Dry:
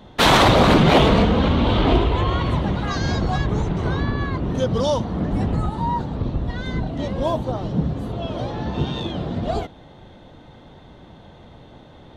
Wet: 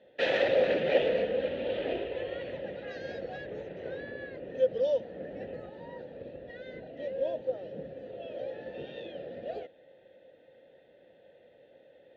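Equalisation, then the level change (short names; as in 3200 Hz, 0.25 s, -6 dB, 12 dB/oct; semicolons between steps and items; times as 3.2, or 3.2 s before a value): vowel filter e; LPF 6500 Hz 24 dB/oct; -1.0 dB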